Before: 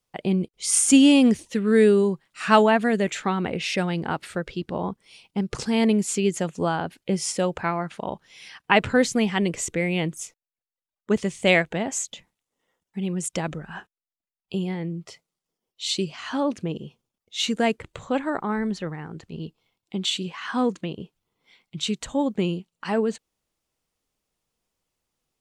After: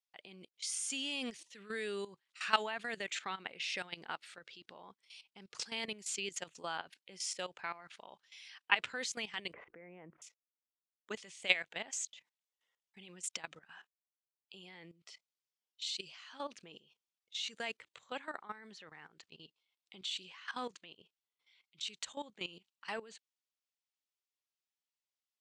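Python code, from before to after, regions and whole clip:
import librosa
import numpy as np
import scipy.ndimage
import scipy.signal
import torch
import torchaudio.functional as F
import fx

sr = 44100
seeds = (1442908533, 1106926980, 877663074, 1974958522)

y = fx.chain(x, sr, fx.bessel_lowpass(hz=1000.0, order=6),
    fx.env_flatten(amount_pct=50), at=(9.53, 10.22))
y = scipy.signal.sosfilt(scipy.signal.butter(2, 4000.0, 'lowpass', fs=sr, output='sos'), y)
y = np.diff(y, prepend=0.0)
y = fx.level_steps(y, sr, step_db=15)
y = y * librosa.db_to_amplitude(6.0)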